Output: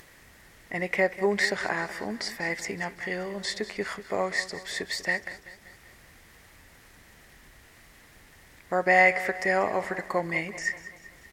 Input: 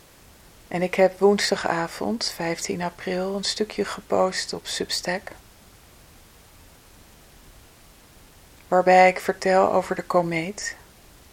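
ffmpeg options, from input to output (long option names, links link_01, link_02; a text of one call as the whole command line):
ffmpeg -i in.wav -filter_complex "[0:a]equalizer=frequency=1900:width_type=o:width=0.47:gain=12.5,acompressor=mode=upward:threshold=-40dB:ratio=2.5,asplit=2[link_01][link_02];[link_02]aecho=0:1:192|384|576|768|960:0.178|0.0942|0.05|0.0265|0.014[link_03];[link_01][link_03]amix=inputs=2:normalize=0,volume=-8dB" out.wav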